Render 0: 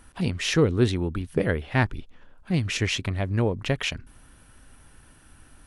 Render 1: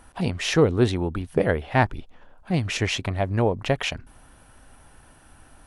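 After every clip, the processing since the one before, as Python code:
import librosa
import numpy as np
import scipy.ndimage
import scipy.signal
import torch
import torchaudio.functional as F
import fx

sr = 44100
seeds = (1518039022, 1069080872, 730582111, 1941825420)

y = fx.peak_eq(x, sr, hz=740.0, db=8.5, octaves=1.1)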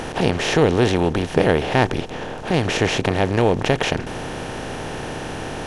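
y = fx.bin_compress(x, sr, power=0.4)
y = y * librosa.db_to_amplitude(-1.0)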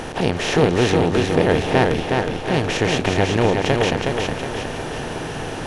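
y = fx.echo_feedback(x, sr, ms=366, feedback_pct=52, wet_db=-3.5)
y = y * librosa.db_to_amplitude(-1.0)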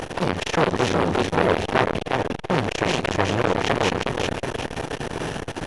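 y = fx.transformer_sat(x, sr, knee_hz=1800.0)
y = y * librosa.db_to_amplitude(2.5)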